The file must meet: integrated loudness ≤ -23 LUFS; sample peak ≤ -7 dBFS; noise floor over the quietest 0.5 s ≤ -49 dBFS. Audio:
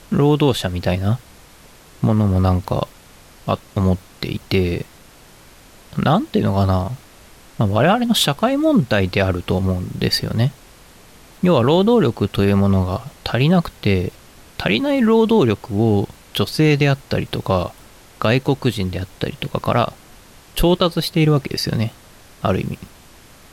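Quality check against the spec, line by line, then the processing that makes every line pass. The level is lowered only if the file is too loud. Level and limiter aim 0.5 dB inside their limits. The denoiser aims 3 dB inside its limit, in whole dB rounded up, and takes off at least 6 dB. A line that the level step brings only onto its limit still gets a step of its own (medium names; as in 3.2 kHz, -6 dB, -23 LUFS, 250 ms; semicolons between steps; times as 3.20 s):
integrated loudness -18.5 LUFS: fail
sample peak -4.0 dBFS: fail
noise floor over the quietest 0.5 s -45 dBFS: fail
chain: trim -5 dB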